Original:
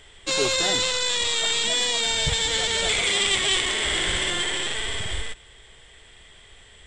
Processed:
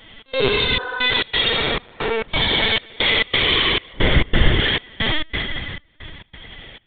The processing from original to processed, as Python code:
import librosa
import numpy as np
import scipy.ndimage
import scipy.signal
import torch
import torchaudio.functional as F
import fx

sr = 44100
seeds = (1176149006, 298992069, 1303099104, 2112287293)

p1 = fx.delta_mod(x, sr, bps=16000, step_db=-31.5, at=(1.49, 2.29))
p2 = p1 + fx.echo_single(p1, sr, ms=81, db=-5.0, dry=0)
p3 = fx.rev_fdn(p2, sr, rt60_s=2.7, lf_ratio=1.3, hf_ratio=0.85, size_ms=47.0, drr_db=-2.5)
p4 = fx.lpc_vocoder(p3, sr, seeds[0], excitation='pitch_kept', order=16)
p5 = fx.tilt_eq(p4, sr, slope=-3.0, at=(3.93, 4.6))
p6 = fx.step_gate(p5, sr, bpm=135, pattern='xx.xxxx..', floor_db=-24.0, edge_ms=4.5)
p7 = fx.spec_repair(p6, sr, seeds[1], start_s=0.55, length_s=0.42, low_hz=290.0, high_hz=1900.0, source='both')
p8 = fx.rider(p7, sr, range_db=4, speed_s=0.5)
p9 = p7 + (p8 * librosa.db_to_amplitude(-2.0))
y = p9 * librosa.db_to_amplitude(-3.0)